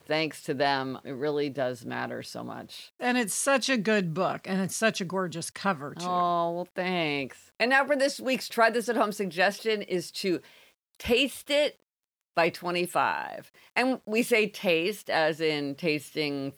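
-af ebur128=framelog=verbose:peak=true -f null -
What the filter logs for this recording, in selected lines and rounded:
Integrated loudness:
  I:         -27.6 LUFS
  Threshold: -38.0 LUFS
Loudness range:
  LRA:         2.7 LU
  Threshold: -47.9 LUFS
  LRA low:   -29.1 LUFS
  LRA high:  -26.4 LUFS
True peak:
  Peak:       -8.8 dBFS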